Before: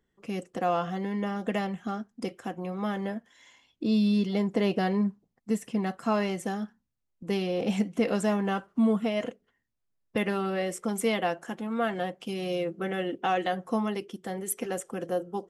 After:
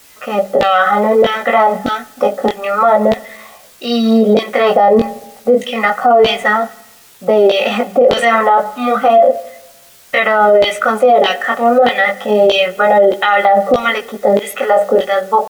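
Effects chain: HPF 160 Hz 12 dB/oct; tilt -1.5 dB/oct; notches 60/120/180/240 Hz; comb 1.7 ms, depth 85%; LFO band-pass saw down 1.6 Hz 350–3300 Hz; requantised 12-bit, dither triangular; chorus 0.3 Hz, delay 16 ms, depth 7.3 ms; pitch shift +1.5 st; on a send at -20.5 dB: reverb RT60 0.95 s, pre-delay 55 ms; on the sum: maximiser +33.5 dB; gain -1 dB

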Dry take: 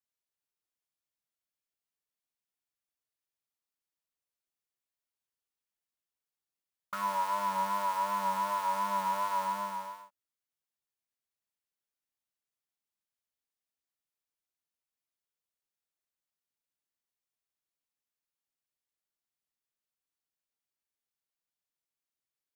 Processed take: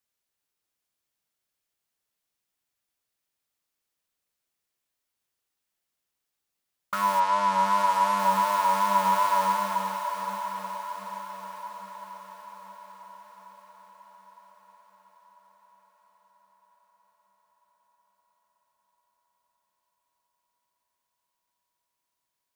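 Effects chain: 7.19–8.18 LPF 5800 Hz -> 12000 Hz 12 dB/oct; diffused feedback echo 0.813 s, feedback 56%, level -8 dB; gain +8 dB

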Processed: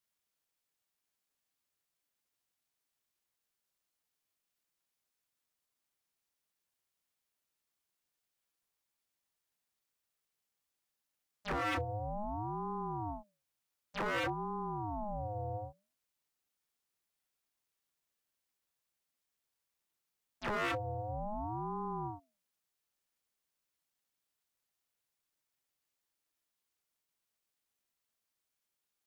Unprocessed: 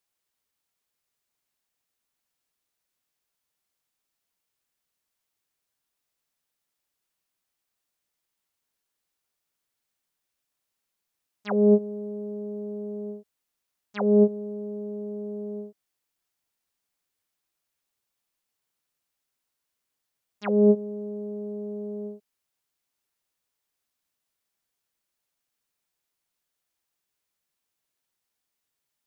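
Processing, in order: notches 50/100/150/200 Hz; wavefolder -25 dBFS; ring modulator with a swept carrier 450 Hz, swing 35%, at 0.55 Hz; gain -1.5 dB

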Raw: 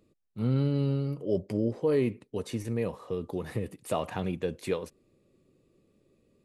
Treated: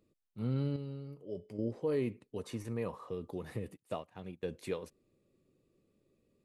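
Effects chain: 0.76–1.59 resonator 430 Hz, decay 0.42 s, mix 60%; 2.44–3.09 bell 1100 Hz +8 dB 0.75 oct; 3.77–4.43 upward expander 2.5:1, over -39 dBFS; gain -7 dB

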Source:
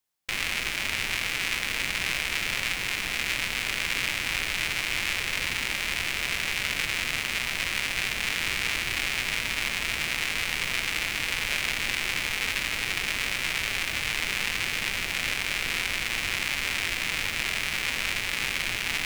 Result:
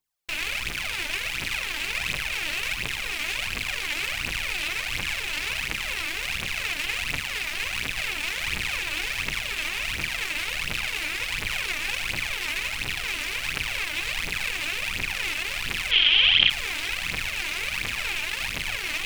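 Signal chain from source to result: rattling part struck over -43 dBFS, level -15 dBFS; phaser 1.4 Hz, delay 3.5 ms, feedback 68%; 15.91–16.5 synth low-pass 3200 Hz, resonance Q 14; gain -4.5 dB

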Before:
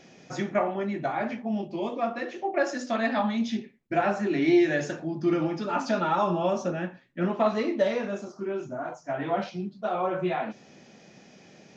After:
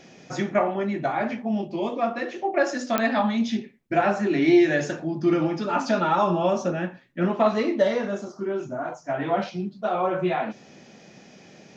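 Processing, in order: 7.79–8.61 notch 2500 Hz, Q 6.9; pops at 2.98, -11 dBFS; gain +3.5 dB

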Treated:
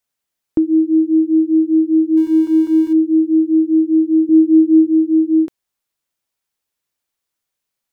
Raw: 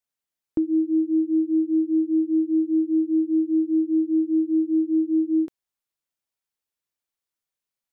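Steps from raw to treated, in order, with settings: 2.17–2.93 zero-crossing step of -41.5 dBFS; 4.29–4.87 low shelf 250 Hz +9 dB; gain +8 dB

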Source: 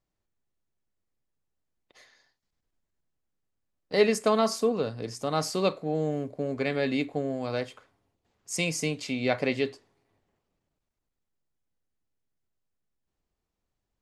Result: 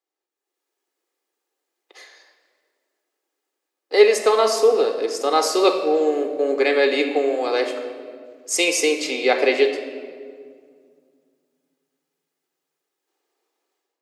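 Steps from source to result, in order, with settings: steep high-pass 310 Hz 36 dB/oct; AGC gain up to 13 dB; reverb RT60 2.0 s, pre-delay 3 ms, DRR 6 dB; gain -3 dB

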